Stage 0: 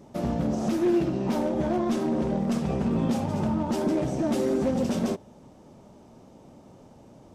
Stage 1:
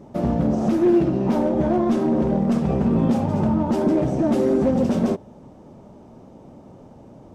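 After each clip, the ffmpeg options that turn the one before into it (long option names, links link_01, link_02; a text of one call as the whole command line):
ffmpeg -i in.wav -af "highshelf=frequency=2100:gain=-10.5,volume=6.5dB" out.wav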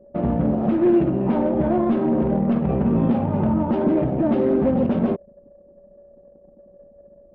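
ffmpeg -i in.wav -af "aeval=exprs='val(0)+0.01*sin(2*PI*570*n/s)':channel_layout=same,anlmdn=15.8,lowpass=frequency=3200:width=0.5412,lowpass=frequency=3200:width=1.3066" out.wav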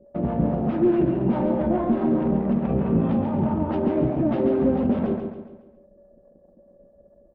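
ffmpeg -i in.wav -filter_complex "[0:a]acrossover=split=530[link_01][link_02];[link_01]aeval=exprs='val(0)*(1-0.7/2+0.7/2*cos(2*PI*4.7*n/s))':channel_layout=same[link_03];[link_02]aeval=exprs='val(0)*(1-0.7/2-0.7/2*cos(2*PI*4.7*n/s))':channel_layout=same[link_04];[link_03][link_04]amix=inputs=2:normalize=0,asplit=2[link_05][link_06];[link_06]aecho=0:1:138|276|414|552|690:0.501|0.221|0.097|0.0427|0.0188[link_07];[link_05][link_07]amix=inputs=2:normalize=0" out.wav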